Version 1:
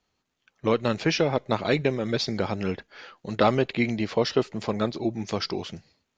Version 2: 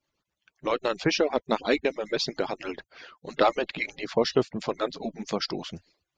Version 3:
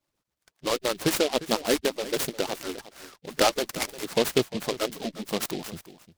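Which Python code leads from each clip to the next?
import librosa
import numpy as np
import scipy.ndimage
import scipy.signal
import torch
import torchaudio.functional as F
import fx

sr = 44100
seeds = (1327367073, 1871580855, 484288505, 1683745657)

y1 = fx.hpss_only(x, sr, part='percussive')
y2 = y1 + 10.0 ** (-16.0 / 20.0) * np.pad(y1, (int(352 * sr / 1000.0), 0))[:len(y1)]
y2 = fx.noise_mod_delay(y2, sr, seeds[0], noise_hz=3200.0, depth_ms=0.11)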